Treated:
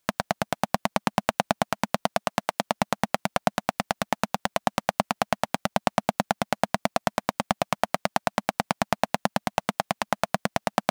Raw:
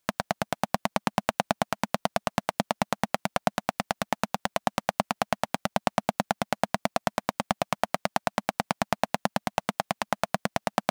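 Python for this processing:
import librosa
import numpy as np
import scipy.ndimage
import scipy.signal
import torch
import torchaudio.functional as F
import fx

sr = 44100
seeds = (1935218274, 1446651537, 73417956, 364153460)

y = fx.highpass(x, sr, hz=fx.line((2.05, 100.0), (2.64, 400.0)), slope=6, at=(2.05, 2.64), fade=0.02)
y = y * librosa.db_to_amplitude(2.0)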